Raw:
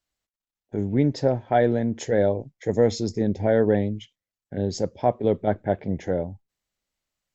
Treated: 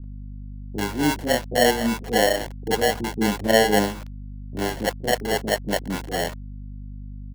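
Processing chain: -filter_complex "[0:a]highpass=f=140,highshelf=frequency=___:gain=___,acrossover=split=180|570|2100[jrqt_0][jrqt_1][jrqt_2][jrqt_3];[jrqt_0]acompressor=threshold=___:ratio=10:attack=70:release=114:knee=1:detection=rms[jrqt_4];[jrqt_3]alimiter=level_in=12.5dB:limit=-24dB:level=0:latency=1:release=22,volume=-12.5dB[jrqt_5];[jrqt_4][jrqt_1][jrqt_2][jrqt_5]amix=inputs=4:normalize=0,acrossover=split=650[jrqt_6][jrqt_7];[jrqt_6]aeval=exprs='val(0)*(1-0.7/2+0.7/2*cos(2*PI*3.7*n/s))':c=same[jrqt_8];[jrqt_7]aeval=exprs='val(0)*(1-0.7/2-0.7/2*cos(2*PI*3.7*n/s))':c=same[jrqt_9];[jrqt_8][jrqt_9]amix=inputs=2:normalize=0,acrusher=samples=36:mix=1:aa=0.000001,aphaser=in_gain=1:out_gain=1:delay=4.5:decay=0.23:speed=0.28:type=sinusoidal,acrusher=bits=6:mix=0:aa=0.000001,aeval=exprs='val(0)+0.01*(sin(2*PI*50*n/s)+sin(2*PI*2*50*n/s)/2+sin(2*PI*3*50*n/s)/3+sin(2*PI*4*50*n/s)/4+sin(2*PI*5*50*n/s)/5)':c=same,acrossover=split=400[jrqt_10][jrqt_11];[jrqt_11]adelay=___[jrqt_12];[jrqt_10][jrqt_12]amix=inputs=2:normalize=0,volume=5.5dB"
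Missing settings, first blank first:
5.3k, -7.5, -47dB, 40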